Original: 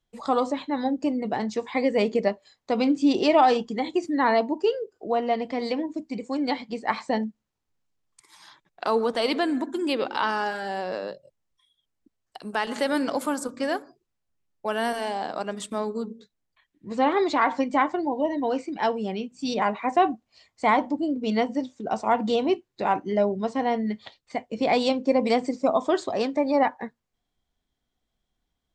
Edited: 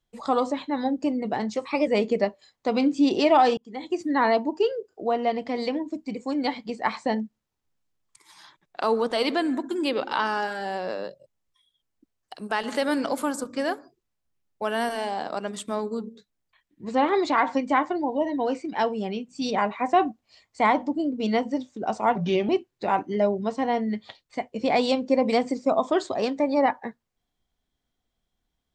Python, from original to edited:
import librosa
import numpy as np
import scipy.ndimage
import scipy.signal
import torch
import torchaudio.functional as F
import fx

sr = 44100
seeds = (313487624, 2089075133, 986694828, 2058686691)

y = fx.edit(x, sr, fx.speed_span(start_s=1.55, length_s=0.36, speed=1.11),
    fx.fade_in_span(start_s=3.61, length_s=0.47),
    fx.speed_span(start_s=22.19, length_s=0.27, speed=0.81), tone=tone)